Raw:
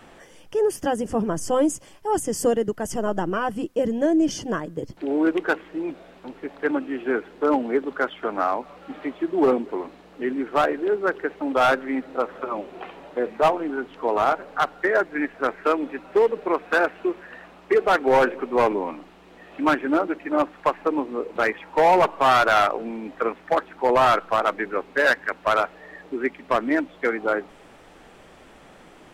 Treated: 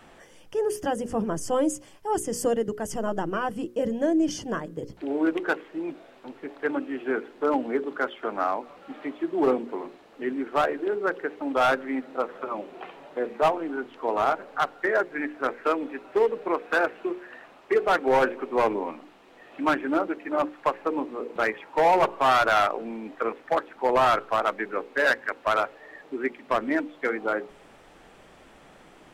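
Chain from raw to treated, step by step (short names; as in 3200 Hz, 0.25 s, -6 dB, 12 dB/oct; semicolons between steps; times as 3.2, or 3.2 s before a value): notches 60/120/180/240/300/360/420/480/540 Hz; gain -3 dB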